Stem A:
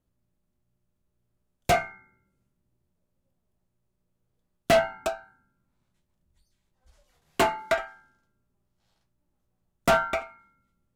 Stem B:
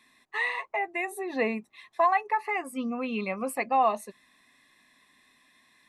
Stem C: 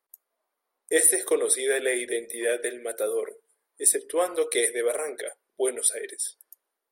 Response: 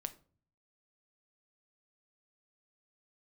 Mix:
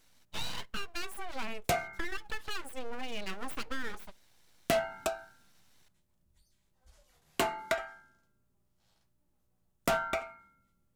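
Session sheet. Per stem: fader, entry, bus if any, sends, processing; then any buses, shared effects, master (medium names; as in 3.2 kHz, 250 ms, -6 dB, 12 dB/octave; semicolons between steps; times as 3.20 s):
-3.0 dB, 0.00 s, send -9.5 dB, none
-5.0 dB, 0.00 s, send -13 dB, compression, threshold -26 dBFS, peak gain reduction 8.5 dB; full-wave rectifier
mute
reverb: on, RT60 0.45 s, pre-delay 6 ms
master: treble shelf 5.5 kHz +5 dB; compression 3:1, threshold -29 dBFS, peak gain reduction 9 dB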